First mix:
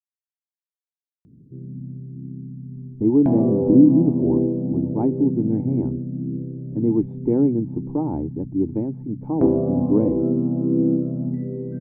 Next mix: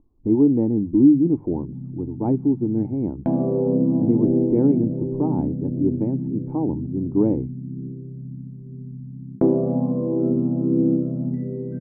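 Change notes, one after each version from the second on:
speech: entry -2.75 s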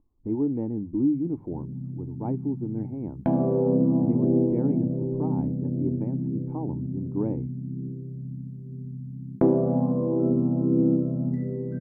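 speech -7.0 dB; master: add EQ curve 100 Hz 0 dB, 340 Hz -3 dB, 1700 Hz +5 dB

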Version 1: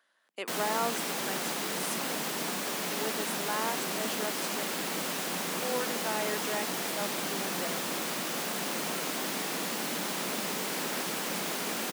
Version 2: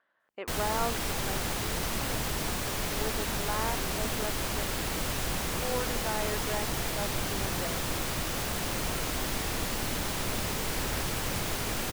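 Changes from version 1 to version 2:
speech: add LPF 1900 Hz 12 dB/oct; master: remove steep high-pass 170 Hz 48 dB/oct

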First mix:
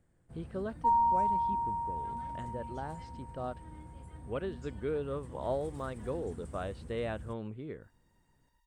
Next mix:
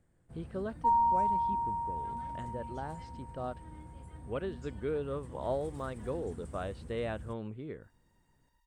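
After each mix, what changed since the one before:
none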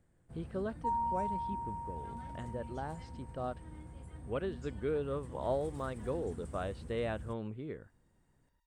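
second sound -7.5 dB

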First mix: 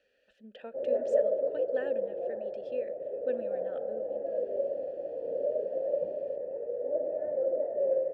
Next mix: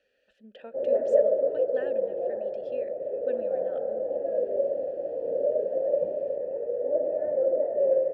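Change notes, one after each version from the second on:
background +5.0 dB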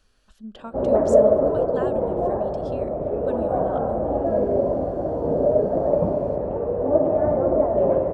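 speech -9.0 dB; master: remove vowel filter e

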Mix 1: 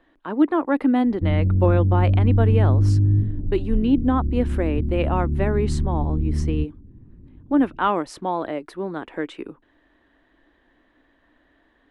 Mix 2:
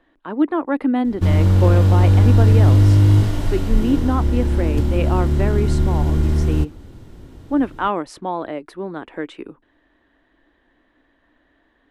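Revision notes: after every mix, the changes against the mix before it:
background: remove ladder low-pass 340 Hz, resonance 25%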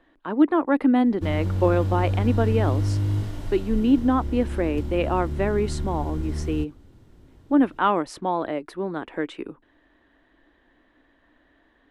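background -11.5 dB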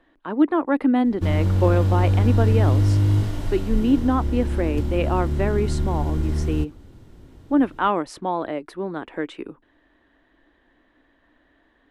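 background +5.5 dB

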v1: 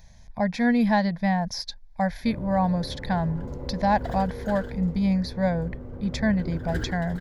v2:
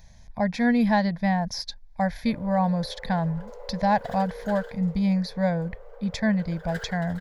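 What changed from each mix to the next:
background: add steep high-pass 430 Hz 96 dB/oct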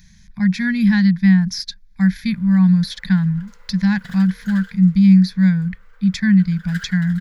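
master: add EQ curve 130 Hz 0 dB, 190 Hz +14 dB, 280 Hz -8 dB, 630 Hz -25 dB, 1400 Hz +6 dB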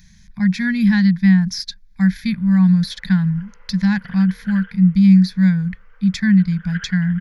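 background: add steep low-pass 3200 Hz 96 dB/oct

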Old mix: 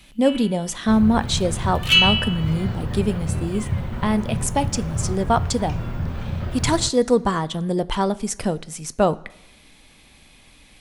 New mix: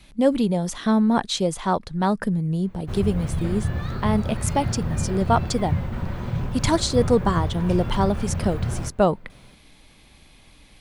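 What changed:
first sound: muted; second sound: entry +2.00 s; reverb: off

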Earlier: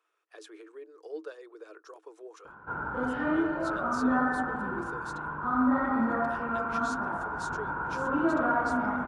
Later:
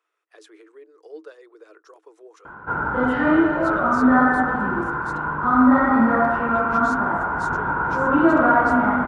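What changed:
background +10.5 dB; master: remove notch 2000 Hz, Q 12

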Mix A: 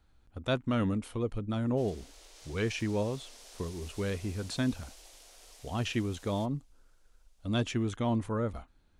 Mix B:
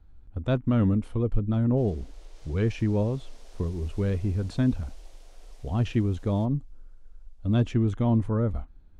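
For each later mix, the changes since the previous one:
master: add tilt -3 dB/oct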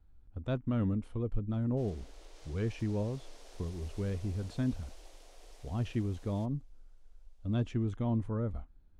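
speech -8.5 dB

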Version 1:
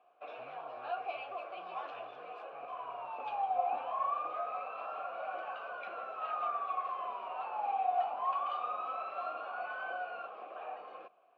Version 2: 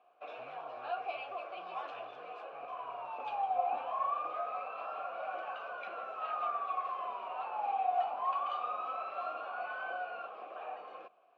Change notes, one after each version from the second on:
first sound: remove air absorption 77 m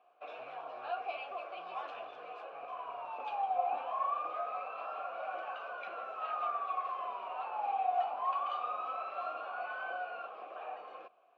speech: add HPF 110 Hz 24 dB/oct; master: add low shelf 140 Hz -8 dB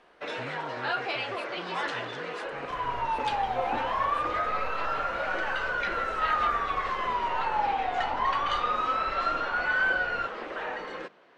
speech: remove HPF 110 Hz 24 dB/oct; second sound: remove BPF 130–5800 Hz; master: remove vowel filter a

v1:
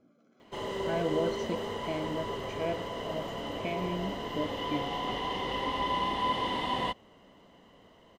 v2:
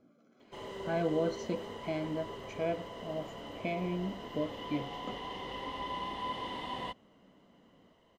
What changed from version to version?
background -8.0 dB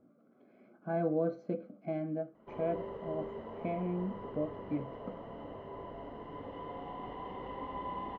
background: entry +1.95 s; master: add LPF 1300 Hz 12 dB/oct

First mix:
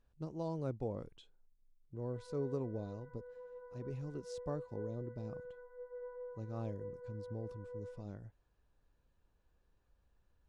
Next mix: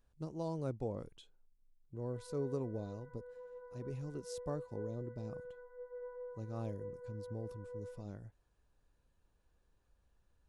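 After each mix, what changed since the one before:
master: remove air absorption 66 m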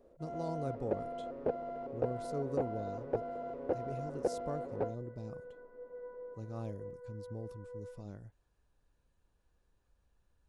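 first sound: unmuted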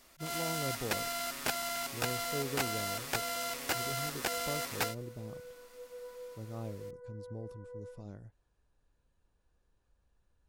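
first sound: remove synth low-pass 490 Hz, resonance Q 5.9

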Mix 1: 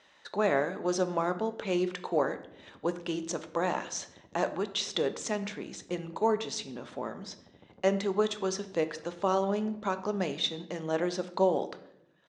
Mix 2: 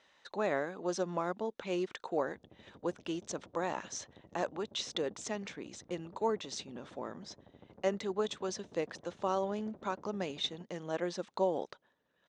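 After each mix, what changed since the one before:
speech -3.0 dB; reverb: off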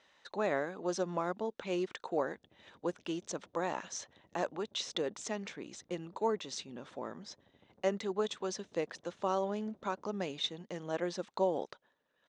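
background -9.0 dB

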